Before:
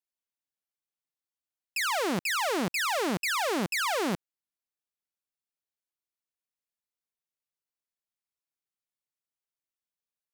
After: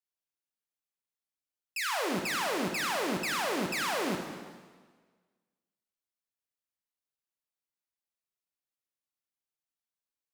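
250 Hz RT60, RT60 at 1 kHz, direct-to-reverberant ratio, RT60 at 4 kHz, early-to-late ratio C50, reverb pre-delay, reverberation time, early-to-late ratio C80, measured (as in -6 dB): 1.4 s, 1.5 s, 2.5 dB, 1.4 s, 4.5 dB, 7 ms, 1.5 s, 6.0 dB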